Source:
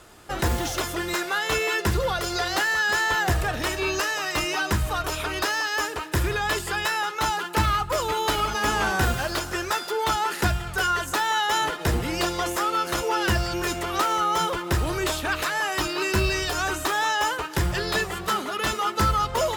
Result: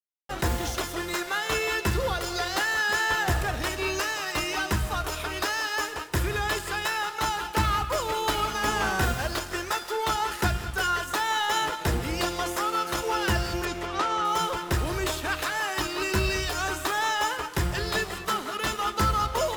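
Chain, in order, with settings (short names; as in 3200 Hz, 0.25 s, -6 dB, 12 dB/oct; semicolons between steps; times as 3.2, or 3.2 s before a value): crossover distortion -39 dBFS; 13.65–14.25 air absorption 78 m; non-linear reverb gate 0.23 s rising, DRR 11.5 dB; gain -1.5 dB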